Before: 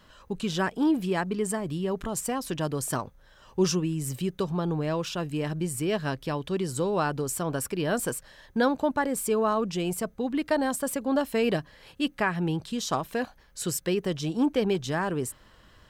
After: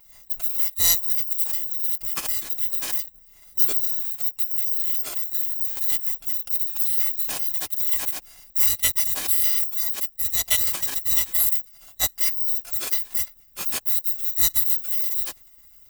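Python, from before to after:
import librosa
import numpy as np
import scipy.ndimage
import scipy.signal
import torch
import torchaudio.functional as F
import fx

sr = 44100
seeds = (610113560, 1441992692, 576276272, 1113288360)

y = fx.bit_reversed(x, sr, seeds[0], block=256)
y = fx.formant_shift(y, sr, semitones=-6)
y = y * librosa.db_to_amplitude(4.5)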